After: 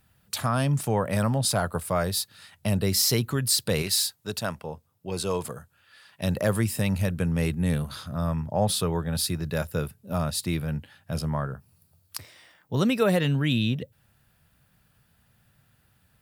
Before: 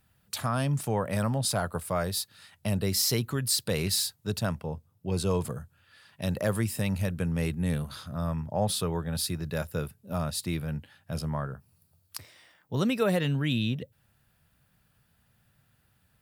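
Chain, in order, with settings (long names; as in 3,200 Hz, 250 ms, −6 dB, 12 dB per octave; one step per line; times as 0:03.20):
0:03.82–0:06.22: low-shelf EQ 250 Hz −11.5 dB
level +3.5 dB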